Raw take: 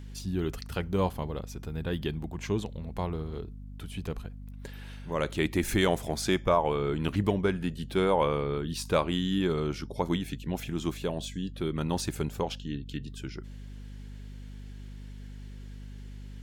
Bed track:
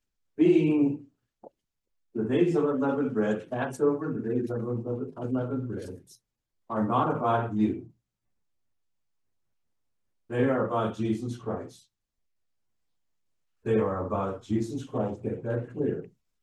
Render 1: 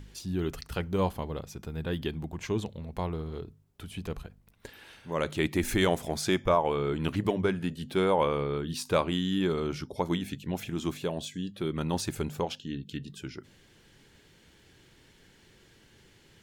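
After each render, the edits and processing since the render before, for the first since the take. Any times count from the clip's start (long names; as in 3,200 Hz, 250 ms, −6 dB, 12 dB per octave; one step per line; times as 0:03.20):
hum removal 50 Hz, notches 5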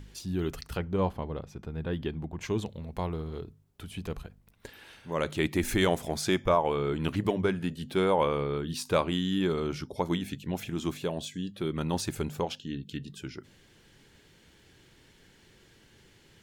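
0:00.77–0:02.41: low-pass filter 2,100 Hz 6 dB per octave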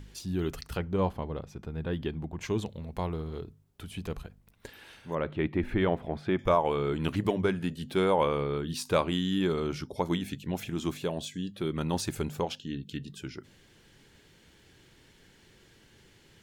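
0:05.15–0:06.39: high-frequency loss of the air 500 metres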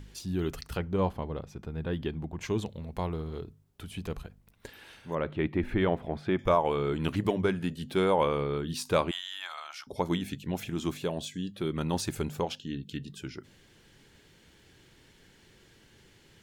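0:09.11–0:09.87: elliptic high-pass filter 670 Hz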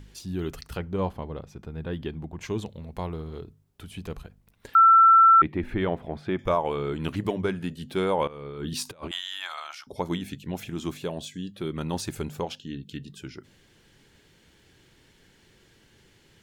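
0:04.75–0:05.42: beep over 1,340 Hz −11.5 dBFS
0:08.27–0:09.75: compressor whose output falls as the input rises −34 dBFS, ratio −0.5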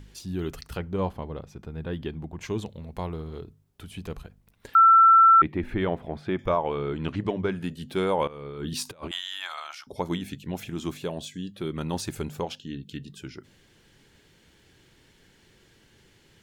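0:06.46–0:07.52: high-frequency loss of the air 100 metres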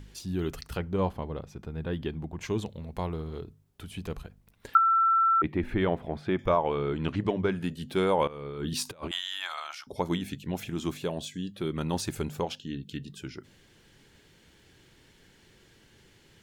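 0:04.77–0:05.44: resonant band-pass 460 Hz, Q 0.9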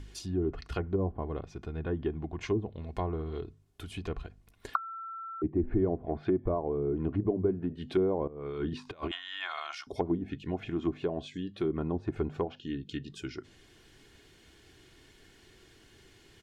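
treble cut that deepens with the level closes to 450 Hz, closed at −25 dBFS
comb filter 2.8 ms, depth 42%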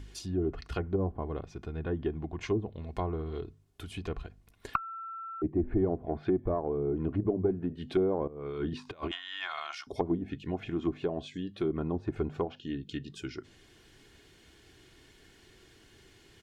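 harmonic generator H 2 −16 dB, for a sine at −12 dBFS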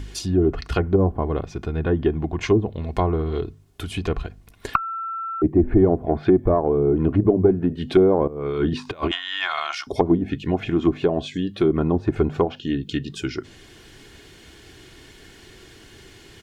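level +12 dB
brickwall limiter −1 dBFS, peak gain reduction 2.5 dB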